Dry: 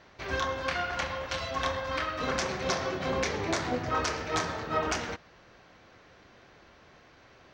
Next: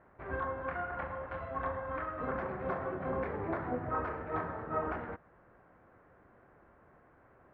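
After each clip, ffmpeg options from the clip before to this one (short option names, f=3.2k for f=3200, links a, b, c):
-af "lowpass=f=1.6k:w=0.5412,lowpass=f=1.6k:w=1.3066,volume=-4.5dB"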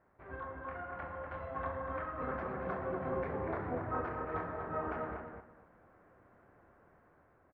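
-filter_complex "[0:a]dynaudnorm=f=690:g=3:m=5.5dB,flanger=delay=9.7:depth=3.3:regen=-78:speed=1.1:shape=triangular,asplit=2[a][b];[b]adelay=242,lowpass=f=2k:p=1,volume=-4dB,asplit=2[c][d];[d]adelay=242,lowpass=f=2k:p=1,volume=0.21,asplit=2[e][f];[f]adelay=242,lowpass=f=2k:p=1,volume=0.21[g];[a][c][e][g]amix=inputs=4:normalize=0,volume=-4dB"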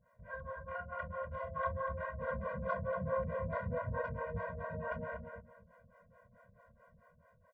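-filter_complex "[0:a]acrossover=split=400[a][b];[a]aeval=exprs='val(0)*(1-1/2+1/2*cos(2*PI*4.6*n/s))':c=same[c];[b]aeval=exprs='val(0)*(1-1/2-1/2*cos(2*PI*4.6*n/s))':c=same[d];[c][d]amix=inputs=2:normalize=0,afftfilt=real='re*eq(mod(floor(b*sr/1024/230),2),0)':imag='im*eq(mod(floor(b*sr/1024/230),2),0)':win_size=1024:overlap=0.75,volume=7dB"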